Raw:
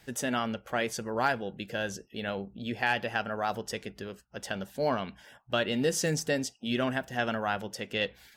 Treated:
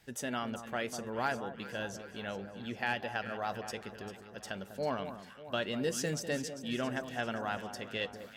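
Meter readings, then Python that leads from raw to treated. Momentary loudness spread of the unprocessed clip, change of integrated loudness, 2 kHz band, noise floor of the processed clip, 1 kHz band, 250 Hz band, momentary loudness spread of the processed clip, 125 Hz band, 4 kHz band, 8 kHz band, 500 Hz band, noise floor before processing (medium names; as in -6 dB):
9 LU, -5.5 dB, -5.5 dB, -52 dBFS, -5.5 dB, -5.5 dB, 9 LU, -5.5 dB, -5.5 dB, -5.5 dB, -5.5 dB, -62 dBFS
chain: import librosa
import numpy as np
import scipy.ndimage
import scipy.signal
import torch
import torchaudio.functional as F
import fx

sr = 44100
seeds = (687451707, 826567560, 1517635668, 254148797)

p1 = x + fx.echo_alternate(x, sr, ms=198, hz=1300.0, feedback_pct=72, wet_db=-9.5, dry=0)
y = p1 * 10.0 ** (-6.0 / 20.0)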